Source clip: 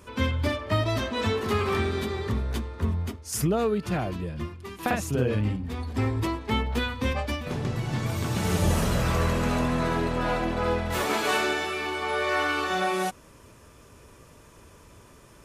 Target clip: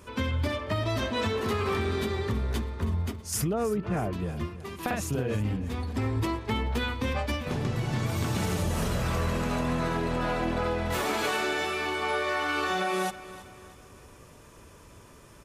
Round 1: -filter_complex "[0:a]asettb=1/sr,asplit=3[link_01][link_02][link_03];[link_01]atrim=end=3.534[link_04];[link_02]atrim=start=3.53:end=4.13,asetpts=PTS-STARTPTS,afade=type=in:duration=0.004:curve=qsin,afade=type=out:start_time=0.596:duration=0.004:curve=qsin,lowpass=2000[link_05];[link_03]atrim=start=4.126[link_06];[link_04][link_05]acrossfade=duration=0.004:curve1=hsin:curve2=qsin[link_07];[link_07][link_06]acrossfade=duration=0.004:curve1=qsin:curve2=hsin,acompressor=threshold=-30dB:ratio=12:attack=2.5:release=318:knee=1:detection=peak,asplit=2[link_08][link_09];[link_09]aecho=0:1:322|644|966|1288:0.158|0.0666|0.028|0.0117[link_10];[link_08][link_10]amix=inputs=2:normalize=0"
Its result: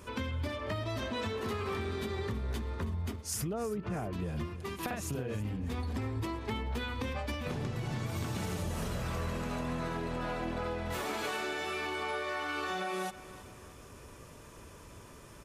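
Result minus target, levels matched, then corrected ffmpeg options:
downward compressor: peak gain reduction +7.5 dB
-filter_complex "[0:a]asettb=1/sr,asplit=3[link_01][link_02][link_03];[link_01]atrim=end=3.534[link_04];[link_02]atrim=start=3.53:end=4.13,asetpts=PTS-STARTPTS,afade=type=in:duration=0.004:curve=qsin,afade=type=out:start_time=0.596:duration=0.004:curve=qsin,lowpass=2000[link_05];[link_03]atrim=start=4.126[link_06];[link_04][link_05]acrossfade=duration=0.004:curve1=hsin:curve2=qsin[link_07];[link_07][link_06]acrossfade=duration=0.004:curve1=qsin:curve2=hsin,acompressor=threshold=-22dB:ratio=12:attack=2.5:release=318:knee=1:detection=peak,asplit=2[link_08][link_09];[link_09]aecho=0:1:322|644|966|1288:0.158|0.0666|0.028|0.0117[link_10];[link_08][link_10]amix=inputs=2:normalize=0"

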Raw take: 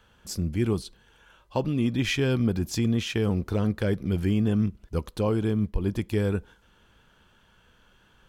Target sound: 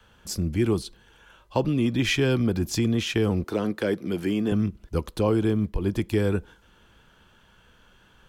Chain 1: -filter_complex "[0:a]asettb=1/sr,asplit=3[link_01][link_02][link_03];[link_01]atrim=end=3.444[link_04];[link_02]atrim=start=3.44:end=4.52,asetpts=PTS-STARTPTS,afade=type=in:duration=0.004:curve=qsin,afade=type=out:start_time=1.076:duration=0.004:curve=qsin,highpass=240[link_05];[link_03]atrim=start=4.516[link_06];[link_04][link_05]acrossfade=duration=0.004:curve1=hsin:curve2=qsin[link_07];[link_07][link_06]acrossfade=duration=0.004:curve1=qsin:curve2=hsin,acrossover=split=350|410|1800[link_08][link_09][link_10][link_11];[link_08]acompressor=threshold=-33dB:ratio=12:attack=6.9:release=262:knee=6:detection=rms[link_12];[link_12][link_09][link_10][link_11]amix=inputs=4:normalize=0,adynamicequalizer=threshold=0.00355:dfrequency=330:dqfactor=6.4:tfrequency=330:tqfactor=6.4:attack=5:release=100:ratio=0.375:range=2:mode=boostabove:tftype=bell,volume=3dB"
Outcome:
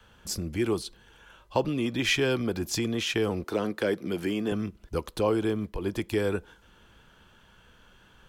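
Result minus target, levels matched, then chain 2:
downward compressor: peak gain reduction +10.5 dB
-filter_complex "[0:a]asettb=1/sr,asplit=3[link_01][link_02][link_03];[link_01]atrim=end=3.444[link_04];[link_02]atrim=start=3.44:end=4.52,asetpts=PTS-STARTPTS,afade=type=in:duration=0.004:curve=qsin,afade=type=out:start_time=1.076:duration=0.004:curve=qsin,highpass=240[link_05];[link_03]atrim=start=4.516[link_06];[link_04][link_05]acrossfade=duration=0.004:curve1=hsin:curve2=qsin[link_07];[link_07][link_06]acrossfade=duration=0.004:curve1=qsin:curve2=hsin,acrossover=split=350|410|1800[link_08][link_09][link_10][link_11];[link_08]acompressor=threshold=-21.5dB:ratio=12:attack=6.9:release=262:knee=6:detection=rms[link_12];[link_12][link_09][link_10][link_11]amix=inputs=4:normalize=0,adynamicequalizer=threshold=0.00355:dfrequency=330:dqfactor=6.4:tfrequency=330:tqfactor=6.4:attack=5:release=100:ratio=0.375:range=2:mode=boostabove:tftype=bell,volume=3dB"

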